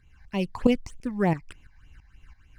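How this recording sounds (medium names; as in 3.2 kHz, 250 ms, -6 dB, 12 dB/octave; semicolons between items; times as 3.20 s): tremolo saw up 3 Hz, depth 70%; phasing stages 8, 3.3 Hz, lowest notch 360–1600 Hz; IMA ADPCM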